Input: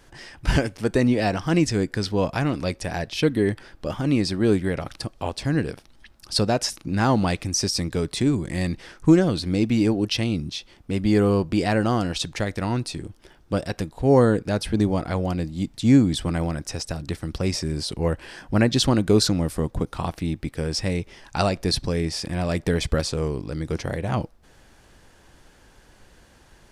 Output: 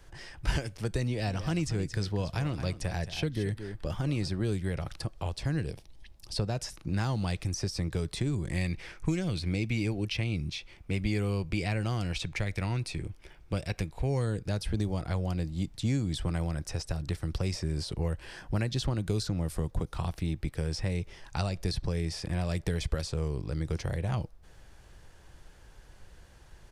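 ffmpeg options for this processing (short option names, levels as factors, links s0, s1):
-filter_complex "[0:a]asplit=3[s0][s1][s2];[s0]afade=t=out:st=1.26:d=0.02[s3];[s1]aecho=1:1:222:0.211,afade=t=in:st=1.26:d=0.02,afade=t=out:st=4.28:d=0.02[s4];[s2]afade=t=in:st=4.28:d=0.02[s5];[s3][s4][s5]amix=inputs=3:normalize=0,asettb=1/sr,asplit=3[s6][s7][s8];[s6]atrim=end=5.664[s9];[s7]atrim=start=5.66:end=6.4,asetpts=PTS-STARTPTS,afade=t=in:d=0.004:c=qsin,afade=t=out:st=0.736:d=0.004:c=qsin,equalizer=f=1400:t=o:w=0.61:g=-11.5[s10];[s8]atrim=start=6.396[s11];[s9][s10]acrossfade=d=0.004:c1=hsin:c2=qsin[s12];[s12][s11]acrossfade=d=0.004:c1=qsin:c2=hsin,asettb=1/sr,asplit=3[s13][s14][s15];[s13]atrim=end=8.564[s16];[s14]atrim=start=8.56:end=14.26,asetpts=PTS-STARTPTS,afade=t=in:d=0.004:c=qsin,afade=t=out:st=5.696:d=0.004:c=qsin,equalizer=f=2300:t=o:w=0.36:g=10.5[s17];[s15]atrim=start=14.256[s18];[s16][s17]acrossfade=d=0.004:c1=hsin:c2=qsin[s19];[s19][s18]acrossfade=d=0.004:c1=qsin:c2=hsin,equalizer=f=250:t=o:w=0.48:g=-8,acrossover=split=210|2700[s20][s21][s22];[s20]acompressor=threshold=0.0355:ratio=4[s23];[s21]acompressor=threshold=0.0282:ratio=4[s24];[s22]acompressor=threshold=0.02:ratio=4[s25];[s23][s24][s25]amix=inputs=3:normalize=0,lowshelf=f=140:g=8.5,volume=0.562"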